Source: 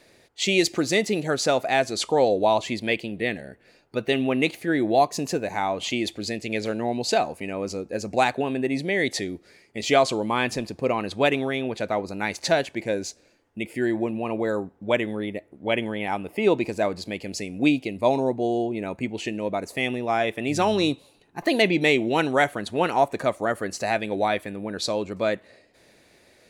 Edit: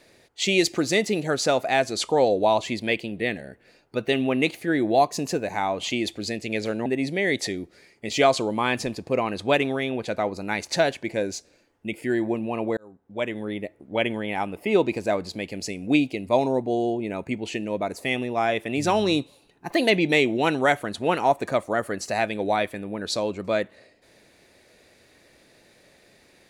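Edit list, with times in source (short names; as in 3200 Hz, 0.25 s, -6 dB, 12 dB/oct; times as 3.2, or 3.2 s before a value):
6.86–8.58 cut
14.49–15.33 fade in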